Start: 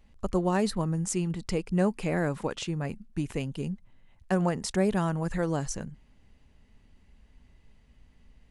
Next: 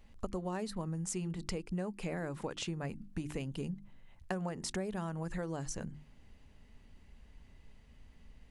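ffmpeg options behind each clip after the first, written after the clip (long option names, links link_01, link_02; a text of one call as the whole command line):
ffmpeg -i in.wav -af "bandreject=frequency=50:width_type=h:width=6,bandreject=frequency=100:width_type=h:width=6,bandreject=frequency=150:width_type=h:width=6,bandreject=frequency=200:width_type=h:width=6,bandreject=frequency=250:width_type=h:width=6,bandreject=frequency=300:width_type=h:width=6,bandreject=frequency=350:width_type=h:width=6,acompressor=threshold=-36dB:ratio=6,volume=1dB" out.wav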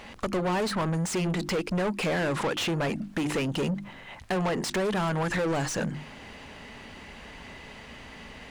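ffmpeg -i in.wav -filter_complex "[0:a]asplit=2[link_01][link_02];[link_02]highpass=frequency=720:poles=1,volume=34dB,asoftclip=type=tanh:threshold=-19dB[link_03];[link_01][link_03]amix=inputs=2:normalize=0,lowpass=frequency=3000:poles=1,volume=-6dB" out.wav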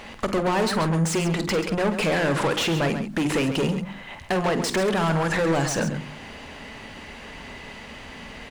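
ffmpeg -i in.wav -af "bandreject=frequency=60:width_type=h:width=6,bandreject=frequency=120:width_type=h:width=6,bandreject=frequency=180:width_type=h:width=6,aecho=1:1:49|135:0.251|0.316,volume=4.5dB" out.wav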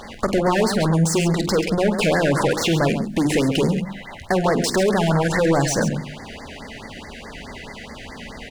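ffmpeg -i in.wav -af "afftfilt=real='re*(1-between(b*sr/1024,990*pow(3100/990,0.5+0.5*sin(2*PI*4.7*pts/sr))/1.41,990*pow(3100/990,0.5+0.5*sin(2*PI*4.7*pts/sr))*1.41))':imag='im*(1-between(b*sr/1024,990*pow(3100/990,0.5+0.5*sin(2*PI*4.7*pts/sr))/1.41,990*pow(3100/990,0.5+0.5*sin(2*PI*4.7*pts/sr))*1.41))':win_size=1024:overlap=0.75,volume=4.5dB" out.wav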